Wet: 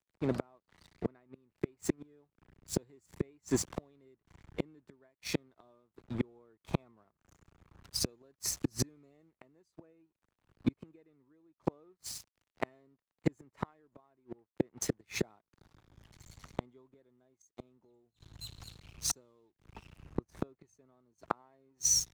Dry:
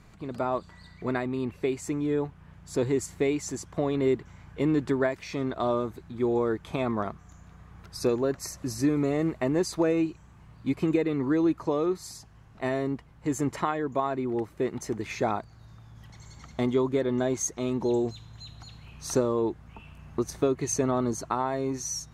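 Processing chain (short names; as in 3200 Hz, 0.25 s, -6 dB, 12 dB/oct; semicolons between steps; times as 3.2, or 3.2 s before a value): crossover distortion -46.5 dBFS; flipped gate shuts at -23 dBFS, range -38 dB; three-band expander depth 40%; gain +4.5 dB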